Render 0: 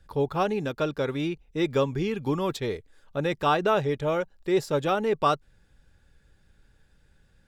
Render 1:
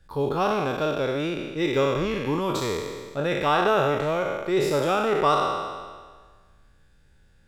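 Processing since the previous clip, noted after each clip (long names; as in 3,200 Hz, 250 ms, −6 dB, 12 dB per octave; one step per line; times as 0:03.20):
peak hold with a decay on every bin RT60 1.58 s
level −1 dB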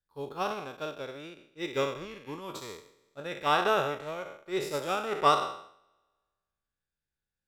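spectral tilt +1.5 dB per octave
expander for the loud parts 2.5 to 1, over −37 dBFS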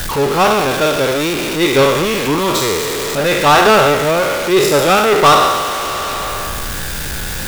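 converter with a step at zero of −32 dBFS
leveller curve on the samples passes 3
level +7 dB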